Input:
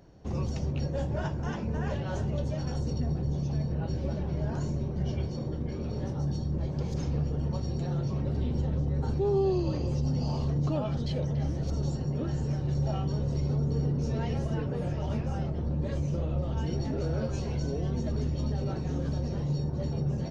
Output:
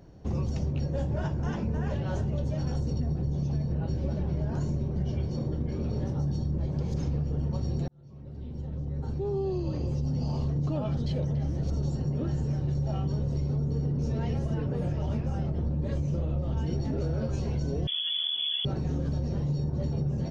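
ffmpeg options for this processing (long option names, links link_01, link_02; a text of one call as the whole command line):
ffmpeg -i in.wav -filter_complex "[0:a]asettb=1/sr,asplit=3[link_01][link_02][link_03];[link_01]atrim=end=17.874[link_04];[link_02]atrim=start=17.87:end=18.65,asetpts=PTS-STARTPTS,afade=type=in:duration=0.004:curve=qsin,afade=type=out:start_time=0.776:duration=0.004:curve=qsin,lowpass=frequency=3000:width_type=q:width=0.5098,lowpass=frequency=3000:width_type=q:width=0.6013,lowpass=frequency=3000:width_type=q:width=0.9,lowpass=frequency=3000:width_type=q:width=2.563,afreqshift=-3500[link_05];[link_03]atrim=start=18.646[link_06];[link_04][link_05]acrossfade=duration=0.004:curve1=hsin:curve2=qsin[link_07];[link_07][link_06]acrossfade=duration=0.004:curve1=qsin:curve2=hsin,asplit=2[link_08][link_09];[link_08]atrim=end=7.88,asetpts=PTS-STARTPTS,afade=type=out:start_time=7.876:duration=0.004:curve=hsin[link_10];[link_09]atrim=start=7.88,asetpts=PTS-STARTPTS,afade=type=in:duration=2.84[link_11];[link_10][link_11]concat=n=2:v=0:a=1,lowshelf=frequency=400:gain=5,acompressor=threshold=-25dB:ratio=6" out.wav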